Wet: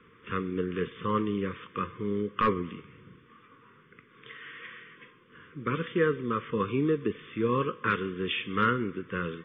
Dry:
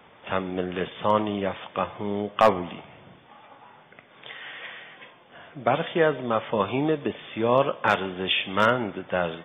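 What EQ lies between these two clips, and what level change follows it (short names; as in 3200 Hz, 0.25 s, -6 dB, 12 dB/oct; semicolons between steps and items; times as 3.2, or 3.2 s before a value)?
Chebyshev band-stop 470–1100 Hz, order 3; air absorption 420 m; 0.0 dB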